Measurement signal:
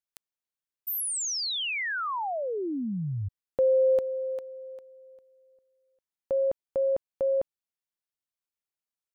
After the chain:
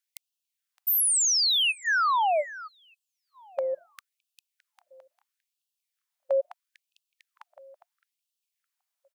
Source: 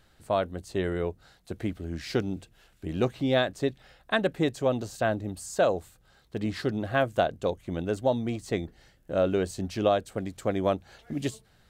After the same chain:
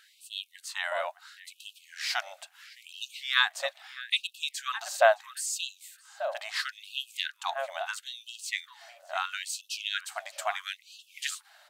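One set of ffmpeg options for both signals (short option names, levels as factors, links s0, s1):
-filter_complex "[0:a]asplit=2[s0][s1];[s1]adelay=614,lowpass=f=2200:p=1,volume=0.188,asplit=2[s2][s3];[s3]adelay=614,lowpass=f=2200:p=1,volume=0.25,asplit=2[s4][s5];[s5]adelay=614,lowpass=f=2200:p=1,volume=0.25[s6];[s2][s4][s6]amix=inputs=3:normalize=0[s7];[s0][s7]amix=inputs=2:normalize=0,afftfilt=real='re*gte(b*sr/1024,530*pow(2600/530,0.5+0.5*sin(2*PI*0.75*pts/sr)))':imag='im*gte(b*sr/1024,530*pow(2600/530,0.5+0.5*sin(2*PI*0.75*pts/sr)))':win_size=1024:overlap=0.75,volume=2.37"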